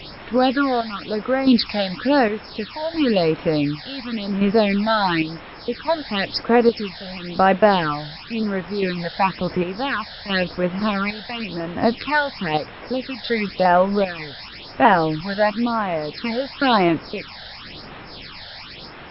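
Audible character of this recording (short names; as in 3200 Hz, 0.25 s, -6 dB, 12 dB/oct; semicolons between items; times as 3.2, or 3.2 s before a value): chopped level 0.68 Hz, depth 60%, duty 55%; a quantiser's noise floor 6-bit, dither triangular; phasing stages 8, 0.96 Hz, lowest notch 320–4700 Hz; MP3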